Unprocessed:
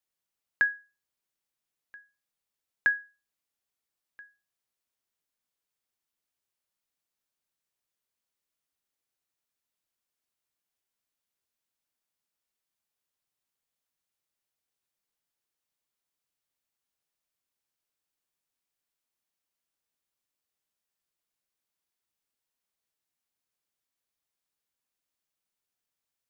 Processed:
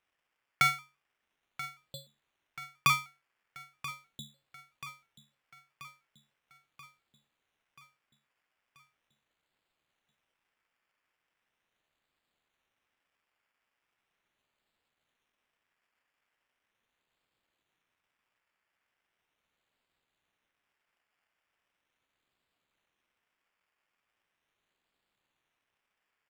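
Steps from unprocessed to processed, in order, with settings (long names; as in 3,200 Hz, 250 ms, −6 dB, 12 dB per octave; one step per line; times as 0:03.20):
inverse Chebyshev high-pass filter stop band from 480 Hz, stop band 40 dB
in parallel at −2 dB: compressor whose output falls as the input rises −27 dBFS, ratio −0.5
on the sum: sample-and-hold swept by an LFO 16×, swing 60% 0.39 Hz
on a send: repeating echo 983 ms, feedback 59%, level −14.5 dB
on the sum: ring modulation 1,800 Hz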